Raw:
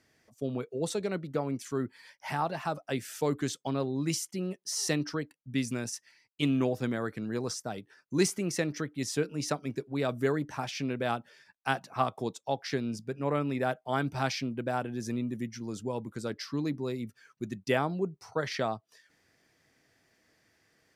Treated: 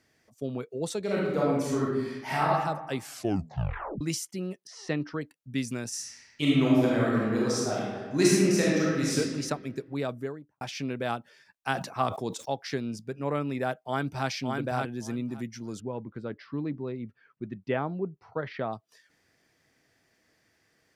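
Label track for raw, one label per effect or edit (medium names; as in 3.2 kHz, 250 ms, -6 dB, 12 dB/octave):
1.030000	2.460000	reverb throw, RT60 1.1 s, DRR -6 dB
3.030000	3.030000	tape stop 0.98 s
4.670000	5.210000	low-pass 2.7 kHz
5.880000	9.170000	reverb throw, RT60 1.7 s, DRR -6 dB
9.900000	10.610000	studio fade out
11.720000	12.490000	decay stretcher at most 91 dB/s
13.770000	14.280000	echo throw 570 ms, feedback 15%, level -3.5 dB
15.800000	18.730000	distance through air 400 m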